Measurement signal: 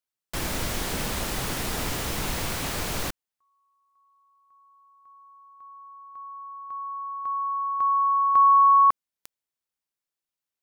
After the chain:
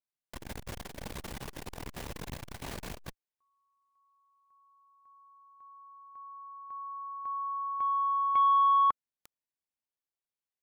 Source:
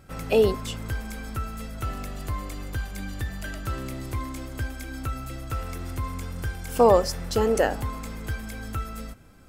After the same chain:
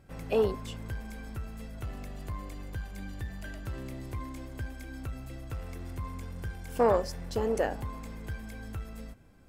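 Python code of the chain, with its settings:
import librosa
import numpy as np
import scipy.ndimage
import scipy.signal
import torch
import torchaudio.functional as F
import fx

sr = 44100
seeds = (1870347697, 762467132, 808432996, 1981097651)

y = fx.high_shelf(x, sr, hz=2800.0, db=-6.0)
y = fx.notch(y, sr, hz=1300.0, q=8.7)
y = fx.transformer_sat(y, sr, knee_hz=430.0)
y = y * 10.0 ** (-5.5 / 20.0)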